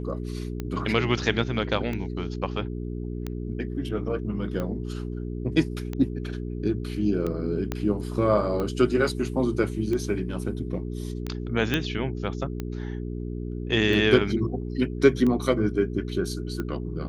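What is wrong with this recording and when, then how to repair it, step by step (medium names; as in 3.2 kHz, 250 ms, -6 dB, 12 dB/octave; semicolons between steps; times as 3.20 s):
hum 60 Hz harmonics 7 -32 dBFS
tick 45 rpm -18 dBFS
7.72 s: pop -14 dBFS
11.74 s: pop -10 dBFS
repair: de-click; de-hum 60 Hz, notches 7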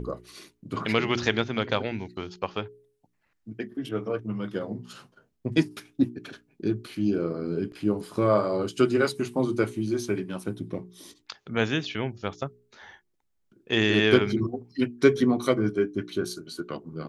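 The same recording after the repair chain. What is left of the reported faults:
7.72 s: pop
11.74 s: pop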